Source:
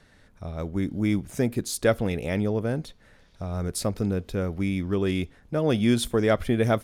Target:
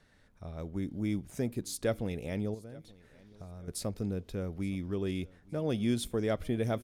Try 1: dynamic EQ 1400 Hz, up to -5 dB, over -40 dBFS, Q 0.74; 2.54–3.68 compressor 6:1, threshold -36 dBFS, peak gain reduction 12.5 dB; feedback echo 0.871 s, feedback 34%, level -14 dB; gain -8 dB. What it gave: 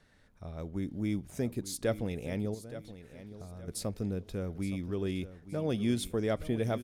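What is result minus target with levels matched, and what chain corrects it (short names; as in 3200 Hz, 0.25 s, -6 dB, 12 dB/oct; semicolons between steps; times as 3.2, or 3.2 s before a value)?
echo-to-direct +9.5 dB
dynamic EQ 1400 Hz, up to -5 dB, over -40 dBFS, Q 0.74; 2.54–3.68 compressor 6:1, threshold -36 dBFS, peak gain reduction 12.5 dB; feedback echo 0.871 s, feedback 34%, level -23.5 dB; gain -8 dB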